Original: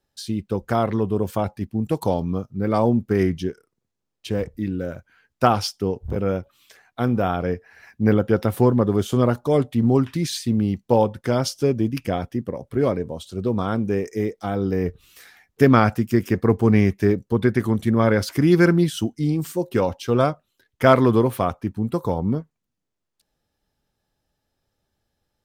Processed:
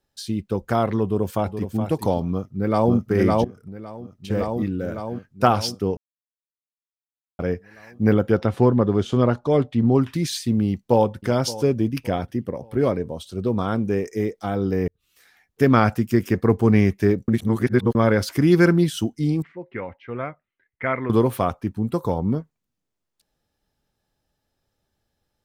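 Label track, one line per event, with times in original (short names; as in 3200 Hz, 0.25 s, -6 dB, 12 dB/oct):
1.030000	1.760000	echo throw 0.42 s, feedback 10%, level -8.5 dB
2.310000	2.940000	echo throw 0.56 s, feedback 65%, level -0.5 dB
3.440000	4.300000	compressor 8:1, threshold -32 dBFS
5.970000	7.390000	mute
8.370000	10.010000	LPF 5000 Hz
10.650000	11.240000	echo throw 0.57 s, feedback 40%, level -16.5 dB
11.840000	13.590000	notch 7100 Hz
14.880000	15.890000	fade in
17.280000	17.950000	reverse
19.420000	21.100000	ladder low-pass 2200 Hz, resonance 75%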